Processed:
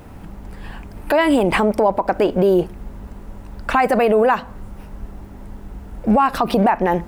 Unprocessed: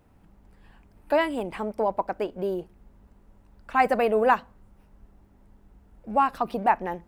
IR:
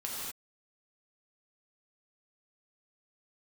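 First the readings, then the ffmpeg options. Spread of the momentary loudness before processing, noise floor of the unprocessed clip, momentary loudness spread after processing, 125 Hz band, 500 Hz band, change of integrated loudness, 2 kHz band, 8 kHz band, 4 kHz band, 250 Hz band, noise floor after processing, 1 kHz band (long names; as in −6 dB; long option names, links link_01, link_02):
9 LU, −58 dBFS, 21 LU, +16.5 dB, +9.0 dB, +8.5 dB, +7.0 dB, can't be measured, +11.0 dB, +13.5 dB, −38 dBFS, +6.0 dB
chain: -af "acompressor=threshold=-26dB:ratio=6,alimiter=level_in=26.5dB:limit=-1dB:release=50:level=0:latency=1,volume=-6dB"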